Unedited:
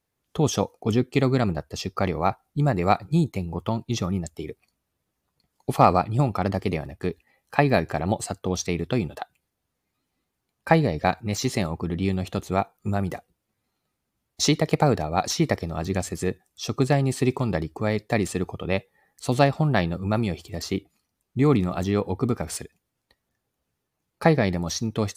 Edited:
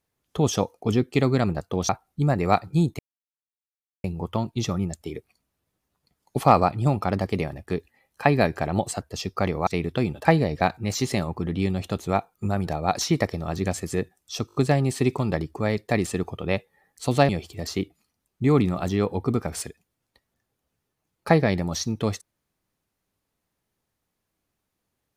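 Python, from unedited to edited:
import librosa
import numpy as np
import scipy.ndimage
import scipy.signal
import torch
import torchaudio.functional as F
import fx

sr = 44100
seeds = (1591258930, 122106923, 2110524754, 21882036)

y = fx.edit(x, sr, fx.swap(start_s=1.61, length_s=0.66, other_s=8.34, other_length_s=0.28),
    fx.insert_silence(at_s=3.37, length_s=1.05),
    fx.cut(start_s=9.2, length_s=1.48),
    fx.cut(start_s=13.1, length_s=1.86),
    fx.stutter(start_s=16.76, slice_s=0.02, count=5),
    fx.cut(start_s=19.5, length_s=0.74), tone=tone)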